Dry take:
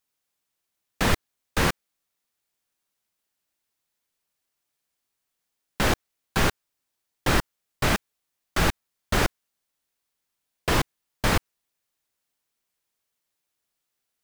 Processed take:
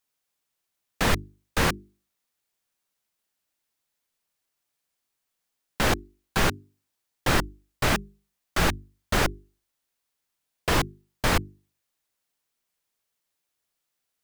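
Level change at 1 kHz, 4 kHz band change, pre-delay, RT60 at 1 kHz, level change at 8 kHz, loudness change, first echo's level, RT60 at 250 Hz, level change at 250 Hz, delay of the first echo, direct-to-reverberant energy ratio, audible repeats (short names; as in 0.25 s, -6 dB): 0.0 dB, 0.0 dB, none, none, 0.0 dB, -0.5 dB, none, none, -1.0 dB, none, none, none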